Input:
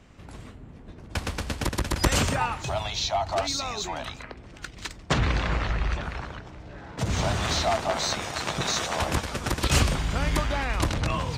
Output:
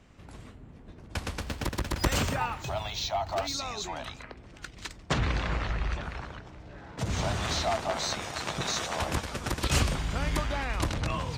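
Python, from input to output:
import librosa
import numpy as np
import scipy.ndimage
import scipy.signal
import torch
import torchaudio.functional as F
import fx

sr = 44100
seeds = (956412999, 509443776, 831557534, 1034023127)

y = fx.resample_linear(x, sr, factor=2, at=(1.41, 3.54))
y = F.gain(torch.from_numpy(y), -4.0).numpy()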